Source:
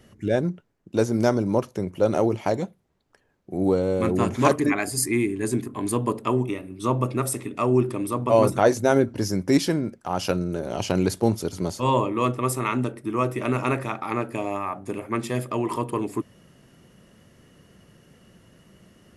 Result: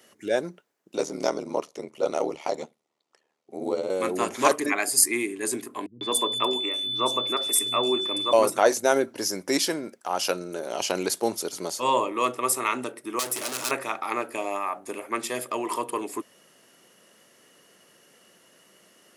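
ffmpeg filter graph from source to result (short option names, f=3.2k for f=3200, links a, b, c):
-filter_complex "[0:a]asettb=1/sr,asplit=3[a][b][c];[a]atrim=end=0.964[d];[b]atrim=start=0.96:end=3.9,asetpts=PTS-STARTPTS,afade=t=in:d=0.004:c=qsin,afade=t=out:st=2.936:d=0.004:c=qsin,lowpass=7.8k,bandreject=f=1.6k:w=5.1,aeval=exprs='val(0)*sin(2*PI*38*n/s)':c=same[e];[c]atrim=start=3.896[f];[d][e]acrossfade=d=0.004:c1=hsin:c2=qsin[g];[g][f]acrossfade=d=0.004:c1=qsin:c2=hsin,asettb=1/sr,asplit=3[h][i][j];[h]atrim=end=5.864[k];[i]atrim=start=5.86:end=8.33,asetpts=PTS-STARTPTS,afade=t=in:d=0.004:c=qsin,afade=t=out:st=2.466:d=0.004:c=qsin,aeval=exprs='val(0)+0.0316*sin(2*PI*3500*n/s)':c=same,acrossover=split=180|3700[l][m][n];[m]adelay=150[o];[n]adelay=260[p];[l][o][p]amix=inputs=3:normalize=0,atrim=end_sample=108927[q];[j]atrim=start=8.326[r];[k][q]acrossfade=d=0.004:c1=hsin:c2=qsin[s];[s][r]acrossfade=d=0.004:c1=qsin:c2=hsin,asettb=1/sr,asplit=3[t][u][v];[t]atrim=end=13.194[w];[u]atrim=start=13.19:end=13.71,asetpts=PTS-STARTPTS,afade=t=in:d=0.004:c=qsin,afade=t=out:st=0.516:d=0.004:c=qsin,volume=30.5dB,asoftclip=hard,volume=-30.5dB,bass=f=250:g=4,treble=f=4k:g=15[x];[v]atrim=start=13.706[y];[w][x]acrossfade=d=0.004:c1=hsin:c2=qsin[z];[z][y]acrossfade=d=0.004:c1=qsin:c2=hsin,highpass=420,highshelf=f=3.9k:g=7.5"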